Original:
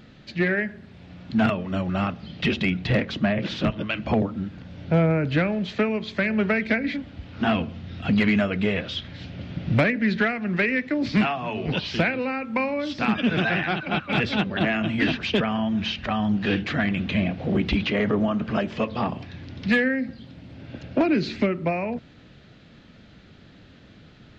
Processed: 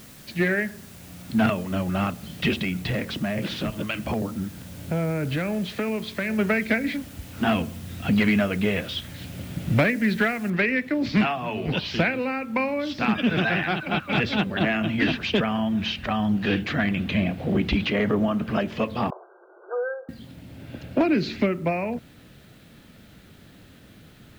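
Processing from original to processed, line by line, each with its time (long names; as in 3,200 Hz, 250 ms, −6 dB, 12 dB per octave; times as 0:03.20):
0:02.61–0:06.39: downward compressor, threshold −22 dBFS
0:10.50: noise floor change −49 dB −63 dB
0:19.10–0:20.09: linear-phase brick-wall band-pass 340–1,600 Hz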